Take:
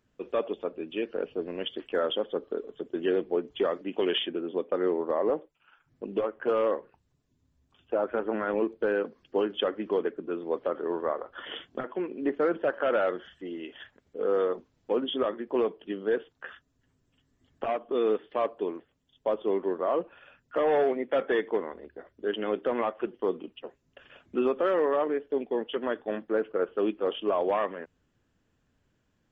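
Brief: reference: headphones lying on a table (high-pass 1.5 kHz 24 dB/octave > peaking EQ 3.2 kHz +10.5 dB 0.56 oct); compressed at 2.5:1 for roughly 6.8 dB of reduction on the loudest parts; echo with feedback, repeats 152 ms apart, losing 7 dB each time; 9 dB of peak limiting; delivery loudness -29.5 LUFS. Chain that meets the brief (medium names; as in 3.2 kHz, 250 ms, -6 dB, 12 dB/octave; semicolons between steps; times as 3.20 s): compression 2.5:1, threshold -32 dBFS; peak limiter -27.5 dBFS; high-pass 1.5 kHz 24 dB/octave; peaking EQ 3.2 kHz +10.5 dB 0.56 oct; feedback delay 152 ms, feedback 45%, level -7 dB; trim +9 dB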